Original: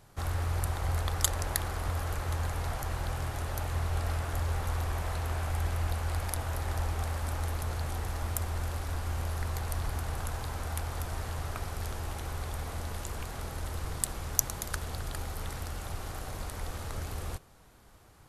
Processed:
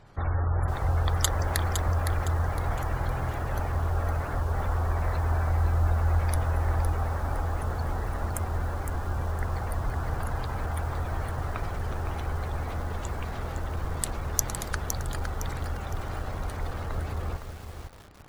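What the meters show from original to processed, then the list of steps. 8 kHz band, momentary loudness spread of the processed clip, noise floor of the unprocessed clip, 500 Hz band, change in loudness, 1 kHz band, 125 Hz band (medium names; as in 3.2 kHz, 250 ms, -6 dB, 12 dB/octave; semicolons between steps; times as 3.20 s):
+0.5 dB, 8 LU, -56 dBFS, +5.5 dB, +4.5 dB, +5.5 dB, +5.5 dB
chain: treble shelf 7.7 kHz -9 dB; spectral gate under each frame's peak -30 dB strong; bit-crushed delay 511 ms, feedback 35%, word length 8-bit, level -7 dB; trim +5 dB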